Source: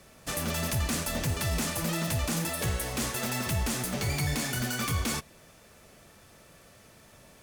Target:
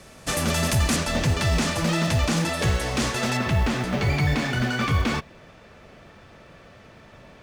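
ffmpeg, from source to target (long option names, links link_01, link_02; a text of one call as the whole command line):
ffmpeg -i in.wav -af "asetnsamples=nb_out_samples=441:pad=0,asendcmd='0.96 lowpass f 5800;3.37 lowpass f 3200',lowpass=10000,acrusher=bits=8:mode=log:mix=0:aa=0.000001,volume=8dB" out.wav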